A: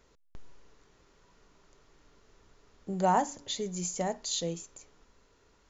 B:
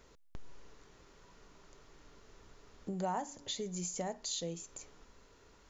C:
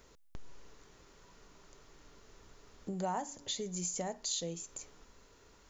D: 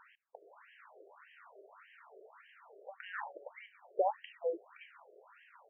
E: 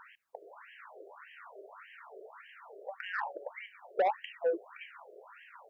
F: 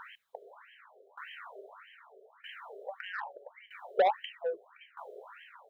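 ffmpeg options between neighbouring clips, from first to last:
-af "acompressor=threshold=0.00708:ratio=2.5,volume=1.41"
-af "highshelf=f=6900:g=6.5"
-af "afftfilt=real='re*between(b*sr/1024,480*pow(2300/480,0.5+0.5*sin(2*PI*1.7*pts/sr))/1.41,480*pow(2300/480,0.5+0.5*sin(2*PI*1.7*pts/sr))*1.41)':imag='im*between(b*sr/1024,480*pow(2300/480,0.5+0.5*sin(2*PI*1.7*pts/sr))/1.41,480*pow(2300/480,0.5+0.5*sin(2*PI*1.7*pts/sr))*1.41)':win_size=1024:overlap=0.75,volume=3.35"
-af "asoftclip=type=tanh:threshold=0.0355,volume=2.24"
-af "superequalizer=6b=0.282:13b=2.51,aeval=exprs='val(0)*pow(10,-19*if(lt(mod(0.79*n/s,1),2*abs(0.79)/1000),1-mod(0.79*n/s,1)/(2*abs(0.79)/1000),(mod(0.79*n/s,1)-2*abs(0.79)/1000)/(1-2*abs(0.79)/1000))/20)':c=same,volume=2.51"

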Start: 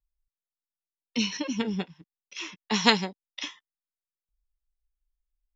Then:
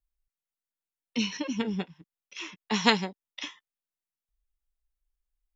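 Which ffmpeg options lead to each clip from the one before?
-af "equalizer=f=4900:t=o:w=0.82:g=-4,volume=0.891"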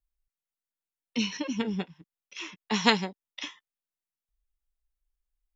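-af anull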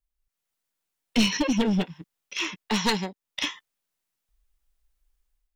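-af "dynaudnorm=f=130:g=5:m=3.35,aeval=exprs='clip(val(0),-1,0.0944)':c=same"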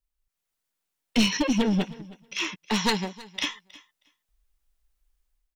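-af "aecho=1:1:317|634:0.0944|0.0142"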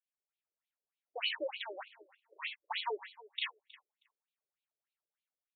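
-af "asoftclip=type=tanh:threshold=0.141,afftfilt=real='re*between(b*sr/1024,430*pow(3200/430,0.5+0.5*sin(2*PI*3.3*pts/sr))/1.41,430*pow(3200/430,0.5+0.5*sin(2*PI*3.3*pts/sr))*1.41)':imag='im*between(b*sr/1024,430*pow(3200/430,0.5+0.5*sin(2*PI*3.3*pts/sr))/1.41,430*pow(3200/430,0.5+0.5*sin(2*PI*3.3*pts/sr))*1.41)':win_size=1024:overlap=0.75,volume=0.631"

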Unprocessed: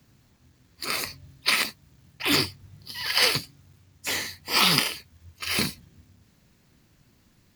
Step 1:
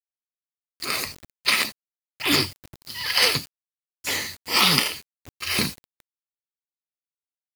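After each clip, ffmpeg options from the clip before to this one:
-af "acrusher=bits=6:mix=0:aa=0.000001,volume=1.26"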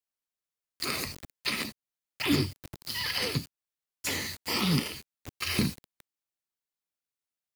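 -filter_complex "[0:a]acrossover=split=350[s0][s1];[s1]acompressor=threshold=0.0251:ratio=6[s2];[s0][s2]amix=inputs=2:normalize=0,volume=1.26"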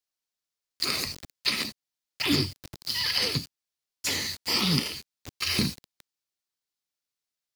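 -af "equalizer=f=4800:t=o:w=1.2:g=7"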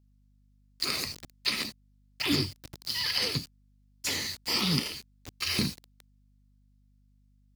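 -af "aeval=exprs='val(0)+0.001*(sin(2*PI*50*n/s)+sin(2*PI*2*50*n/s)/2+sin(2*PI*3*50*n/s)/3+sin(2*PI*4*50*n/s)/4+sin(2*PI*5*50*n/s)/5)':c=same,volume=0.75"

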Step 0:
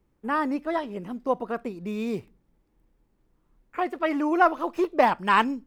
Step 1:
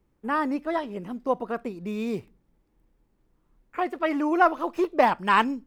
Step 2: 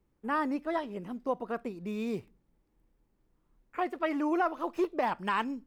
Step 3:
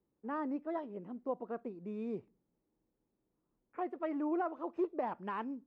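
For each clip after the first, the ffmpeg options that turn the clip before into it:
-af anull
-af "alimiter=limit=0.188:level=0:latency=1:release=209,volume=0.596"
-af "bandpass=f=380:t=q:w=0.59:csg=0,volume=0.596"

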